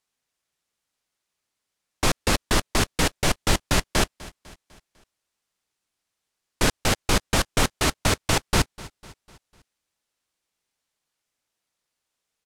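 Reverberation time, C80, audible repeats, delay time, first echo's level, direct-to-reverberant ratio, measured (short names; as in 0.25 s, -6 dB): none, none, 3, 0.25 s, -20.0 dB, none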